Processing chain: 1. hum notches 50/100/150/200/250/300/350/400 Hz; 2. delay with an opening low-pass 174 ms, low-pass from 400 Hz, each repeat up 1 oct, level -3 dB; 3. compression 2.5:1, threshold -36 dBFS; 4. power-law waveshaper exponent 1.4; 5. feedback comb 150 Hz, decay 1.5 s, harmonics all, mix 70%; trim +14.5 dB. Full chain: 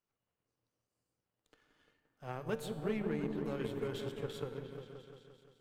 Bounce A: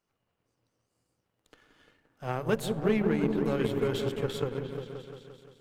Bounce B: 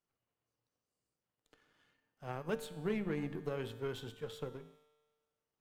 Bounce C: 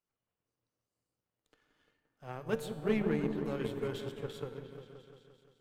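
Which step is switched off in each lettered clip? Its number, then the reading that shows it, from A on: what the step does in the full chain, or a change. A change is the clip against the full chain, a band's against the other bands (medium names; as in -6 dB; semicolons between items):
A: 5, loudness change +10.0 LU; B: 2, momentary loudness spread change -5 LU; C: 3, momentary loudness spread change +4 LU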